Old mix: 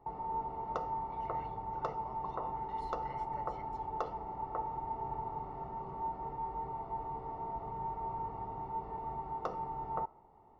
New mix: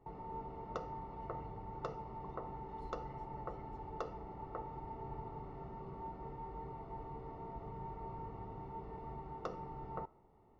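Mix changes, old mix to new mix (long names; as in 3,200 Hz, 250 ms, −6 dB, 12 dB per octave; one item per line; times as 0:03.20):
speech −12.0 dB
background: add parametric band 860 Hz −10 dB 0.95 octaves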